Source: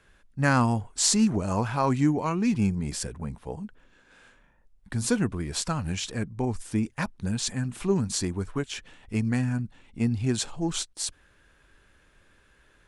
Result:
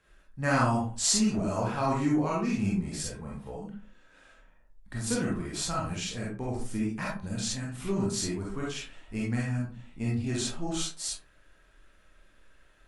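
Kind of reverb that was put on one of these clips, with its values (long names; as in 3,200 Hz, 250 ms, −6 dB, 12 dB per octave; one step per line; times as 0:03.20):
comb and all-pass reverb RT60 0.4 s, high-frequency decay 0.5×, pre-delay 5 ms, DRR −5.5 dB
level −8 dB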